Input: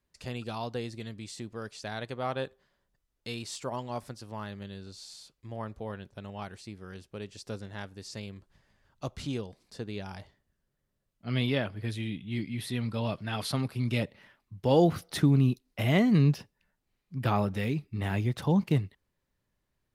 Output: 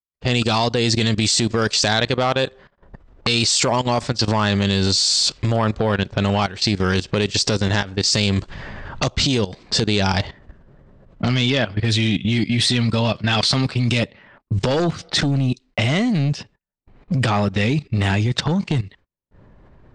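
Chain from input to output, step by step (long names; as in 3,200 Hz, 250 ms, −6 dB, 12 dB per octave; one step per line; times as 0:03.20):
camcorder AGC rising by 46 dB per second
dynamic equaliser 4,800 Hz, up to +4 dB, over −40 dBFS, Q 1.7
sine wavefolder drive 12 dB, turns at −3.5 dBFS
low-pass that shuts in the quiet parts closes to 820 Hz, open at −6 dBFS
noise gate −36 dBFS, range −35 dB
elliptic low-pass filter 8,100 Hz, stop band 60 dB
high-shelf EQ 3,300 Hz +10 dB
output level in coarse steps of 15 dB
level −3 dB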